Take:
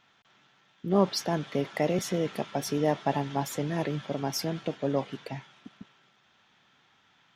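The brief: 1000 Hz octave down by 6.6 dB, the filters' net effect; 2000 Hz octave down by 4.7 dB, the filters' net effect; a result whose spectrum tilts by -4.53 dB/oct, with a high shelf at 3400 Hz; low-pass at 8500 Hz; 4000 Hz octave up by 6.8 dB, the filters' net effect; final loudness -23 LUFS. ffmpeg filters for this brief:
-af "lowpass=8.5k,equalizer=f=1k:t=o:g=-9,equalizer=f=2k:t=o:g=-6.5,highshelf=f=3.4k:g=3.5,equalizer=f=4k:t=o:g=8.5,volume=7dB"

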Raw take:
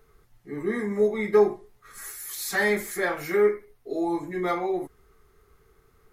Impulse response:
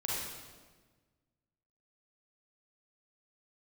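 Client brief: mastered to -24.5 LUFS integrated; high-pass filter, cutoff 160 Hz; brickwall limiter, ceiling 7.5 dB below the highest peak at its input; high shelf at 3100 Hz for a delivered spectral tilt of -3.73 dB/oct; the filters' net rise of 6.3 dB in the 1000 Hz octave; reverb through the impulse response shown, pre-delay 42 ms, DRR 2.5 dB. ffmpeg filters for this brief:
-filter_complex "[0:a]highpass=160,equalizer=f=1k:t=o:g=8,highshelf=f=3.1k:g=4.5,alimiter=limit=-15dB:level=0:latency=1,asplit=2[a][b];[1:a]atrim=start_sample=2205,adelay=42[c];[b][c]afir=irnorm=-1:irlink=0,volume=-7.5dB[d];[a][d]amix=inputs=2:normalize=0"

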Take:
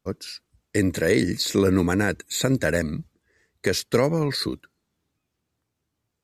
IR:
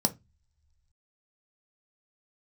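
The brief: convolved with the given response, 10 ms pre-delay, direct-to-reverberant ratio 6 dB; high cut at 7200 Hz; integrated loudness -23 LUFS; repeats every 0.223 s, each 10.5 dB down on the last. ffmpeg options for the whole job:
-filter_complex "[0:a]lowpass=7.2k,aecho=1:1:223|446|669:0.299|0.0896|0.0269,asplit=2[a][b];[1:a]atrim=start_sample=2205,adelay=10[c];[b][c]afir=irnorm=-1:irlink=0,volume=-13.5dB[d];[a][d]amix=inputs=2:normalize=0,volume=-2.5dB"

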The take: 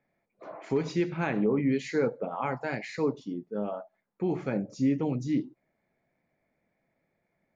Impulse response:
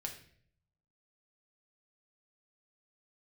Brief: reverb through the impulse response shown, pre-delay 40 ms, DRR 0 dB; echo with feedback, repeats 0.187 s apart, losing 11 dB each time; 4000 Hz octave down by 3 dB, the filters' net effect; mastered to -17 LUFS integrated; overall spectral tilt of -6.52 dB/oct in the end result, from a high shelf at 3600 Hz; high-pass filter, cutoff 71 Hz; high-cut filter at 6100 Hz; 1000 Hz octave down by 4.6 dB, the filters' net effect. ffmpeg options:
-filter_complex "[0:a]highpass=71,lowpass=6.1k,equalizer=f=1k:t=o:g=-6.5,highshelf=f=3.6k:g=7,equalizer=f=4k:t=o:g=-7.5,aecho=1:1:187|374|561:0.282|0.0789|0.0221,asplit=2[a][b];[1:a]atrim=start_sample=2205,adelay=40[c];[b][c]afir=irnorm=-1:irlink=0,volume=1.5dB[d];[a][d]amix=inputs=2:normalize=0,volume=10.5dB"

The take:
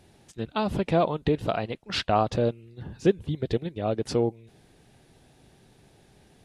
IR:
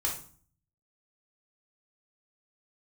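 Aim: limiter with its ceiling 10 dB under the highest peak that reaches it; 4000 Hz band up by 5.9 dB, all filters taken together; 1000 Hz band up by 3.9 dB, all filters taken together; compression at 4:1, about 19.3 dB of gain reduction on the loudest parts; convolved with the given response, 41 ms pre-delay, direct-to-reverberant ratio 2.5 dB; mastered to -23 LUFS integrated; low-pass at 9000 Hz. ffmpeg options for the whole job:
-filter_complex "[0:a]lowpass=9k,equalizer=f=1k:t=o:g=5.5,equalizer=f=4k:t=o:g=7,acompressor=threshold=-39dB:ratio=4,alimiter=level_in=7dB:limit=-24dB:level=0:latency=1,volume=-7dB,asplit=2[a][b];[1:a]atrim=start_sample=2205,adelay=41[c];[b][c]afir=irnorm=-1:irlink=0,volume=-8dB[d];[a][d]amix=inputs=2:normalize=0,volume=18.5dB"

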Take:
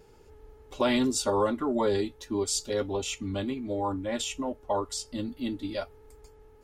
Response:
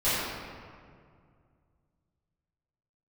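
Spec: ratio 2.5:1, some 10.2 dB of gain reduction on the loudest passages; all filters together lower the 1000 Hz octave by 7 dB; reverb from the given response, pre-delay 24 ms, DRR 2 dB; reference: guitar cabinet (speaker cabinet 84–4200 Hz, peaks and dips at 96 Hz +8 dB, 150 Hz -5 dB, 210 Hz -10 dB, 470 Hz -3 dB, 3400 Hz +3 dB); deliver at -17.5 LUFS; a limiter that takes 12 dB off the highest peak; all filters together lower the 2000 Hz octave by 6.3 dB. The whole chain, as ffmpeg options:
-filter_complex "[0:a]equalizer=f=1k:t=o:g=-7,equalizer=f=2k:t=o:g=-6.5,acompressor=threshold=-39dB:ratio=2.5,alimiter=level_in=13dB:limit=-24dB:level=0:latency=1,volume=-13dB,asplit=2[a][b];[1:a]atrim=start_sample=2205,adelay=24[c];[b][c]afir=irnorm=-1:irlink=0,volume=-16dB[d];[a][d]amix=inputs=2:normalize=0,highpass=84,equalizer=f=96:t=q:w=4:g=8,equalizer=f=150:t=q:w=4:g=-5,equalizer=f=210:t=q:w=4:g=-10,equalizer=f=470:t=q:w=4:g=-3,equalizer=f=3.4k:t=q:w=4:g=3,lowpass=f=4.2k:w=0.5412,lowpass=f=4.2k:w=1.3066,volume=27dB"

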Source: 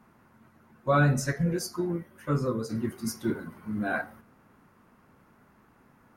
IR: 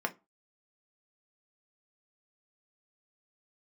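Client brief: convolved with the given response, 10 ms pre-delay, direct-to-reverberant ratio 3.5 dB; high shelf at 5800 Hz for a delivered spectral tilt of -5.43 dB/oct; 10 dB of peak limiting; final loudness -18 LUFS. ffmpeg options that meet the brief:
-filter_complex "[0:a]highshelf=f=5.8k:g=7.5,alimiter=limit=-21.5dB:level=0:latency=1,asplit=2[a][b];[1:a]atrim=start_sample=2205,adelay=10[c];[b][c]afir=irnorm=-1:irlink=0,volume=-9.5dB[d];[a][d]amix=inputs=2:normalize=0,volume=12.5dB"

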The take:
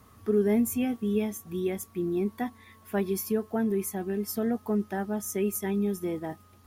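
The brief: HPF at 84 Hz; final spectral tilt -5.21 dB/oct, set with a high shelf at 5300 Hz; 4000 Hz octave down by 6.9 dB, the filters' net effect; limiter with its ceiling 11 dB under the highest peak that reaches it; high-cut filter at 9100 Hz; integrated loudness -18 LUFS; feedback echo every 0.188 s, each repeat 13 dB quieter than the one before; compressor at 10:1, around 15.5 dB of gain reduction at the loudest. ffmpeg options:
-af "highpass=84,lowpass=9.1k,equalizer=f=4k:t=o:g=-7,highshelf=f=5.3k:g=-5.5,acompressor=threshold=-37dB:ratio=10,alimiter=level_in=13.5dB:limit=-24dB:level=0:latency=1,volume=-13.5dB,aecho=1:1:188|376|564:0.224|0.0493|0.0108,volume=28dB"

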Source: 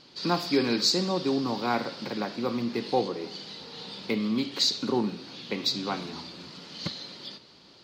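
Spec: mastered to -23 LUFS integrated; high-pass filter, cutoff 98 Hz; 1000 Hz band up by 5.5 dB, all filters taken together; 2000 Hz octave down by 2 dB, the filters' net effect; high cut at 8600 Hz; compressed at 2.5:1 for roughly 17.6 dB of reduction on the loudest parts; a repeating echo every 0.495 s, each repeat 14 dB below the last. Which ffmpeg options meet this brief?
-af "highpass=98,lowpass=8.6k,equalizer=f=1k:t=o:g=8.5,equalizer=f=2k:t=o:g=-6,acompressor=threshold=-45dB:ratio=2.5,aecho=1:1:495|990:0.2|0.0399,volume=19dB"

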